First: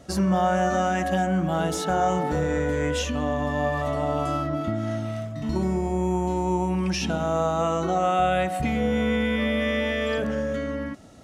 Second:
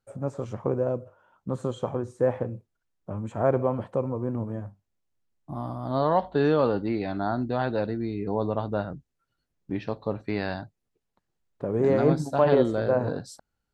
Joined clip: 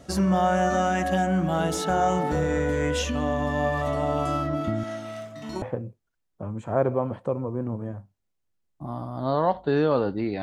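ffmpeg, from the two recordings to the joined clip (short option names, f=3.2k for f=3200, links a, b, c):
-filter_complex "[0:a]asettb=1/sr,asplit=3[a][b][c];[a]atrim=end=4.834[d];[b]atrim=start=4.83:end=5.62,asetpts=PTS-STARTPTS,afade=t=in:d=0.004:c=qsin,afade=t=out:st=0.786:d=0.004:c=qsin,highpass=f=540:p=1[e];[c]atrim=start=5.616[f];[d][e]acrossfade=d=0.004:c1=hsin:c2=qsin[g];[g][f]acrossfade=d=0.004:c1=qsin:c2=hsin,apad=whole_dur=10.42,atrim=end=10.42,atrim=end=5.622[h];[1:a]atrim=start=2.298:end=7.1[i];[h][i]acrossfade=d=0.004:c1=hsin:c2=hsin"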